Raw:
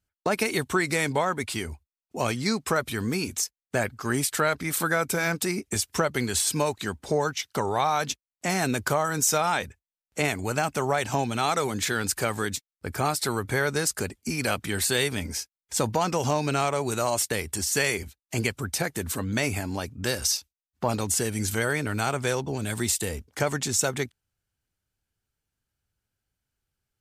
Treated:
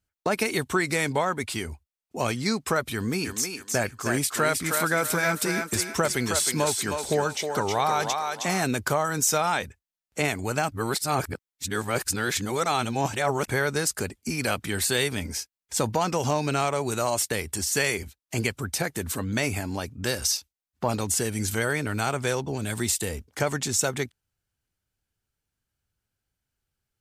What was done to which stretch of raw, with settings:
2.93–8.63 thinning echo 0.315 s, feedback 38%, high-pass 460 Hz, level -3.5 dB
10.72–13.48 reverse

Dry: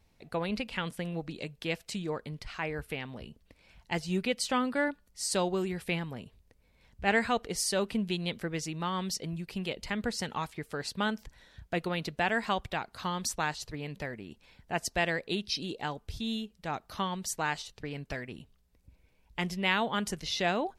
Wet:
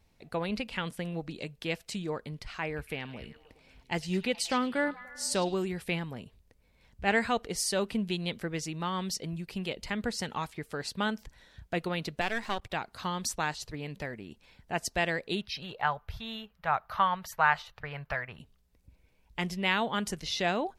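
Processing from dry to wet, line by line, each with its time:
2.66–5.54 delay with a stepping band-pass 0.106 s, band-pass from 4000 Hz, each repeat -0.7 oct, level -10 dB
12.21–12.7 half-wave gain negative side -12 dB
15.41–18.39 EQ curve 150 Hz 0 dB, 300 Hz -16 dB, 590 Hz +4 dB, 1300 Hz +11 dB, 8900 Hz -15 dB, 13000 Hz +1 dB

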